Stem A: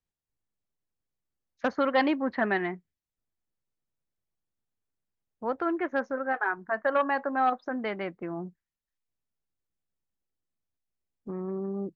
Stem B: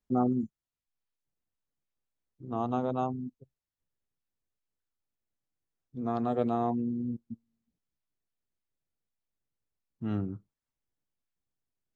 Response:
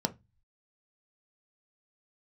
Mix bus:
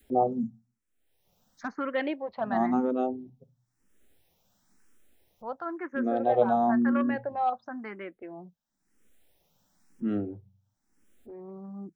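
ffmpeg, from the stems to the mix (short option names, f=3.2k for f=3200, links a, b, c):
-filter_complex "[0:a]volume=-5dB[a];[1:a]volume=-0.5dB,asplit=2[b][c];[c]volume=-11dB[d];[2:a]atrim=start_sample=2205[e];[d][e]afir=irnorm=-1:irlink=0[f];[a][b][f]amix=inputs=3:normalize=0,acompressor=mode=upward:threshold=-41dB:ratio=2.5,adynamicequalizer=threshold=0.0141:dfrequency=660:dqfactor=1.1:tfrequency=660:tqfactor=1.1:attack=5:release=100:ratio=0.375:range=2.5:mode=boostabove:tftype=bell,asplit=2[g][h];[h]afreqshift=0.98[i];[g][i]amix=inputs=2:normalize=1"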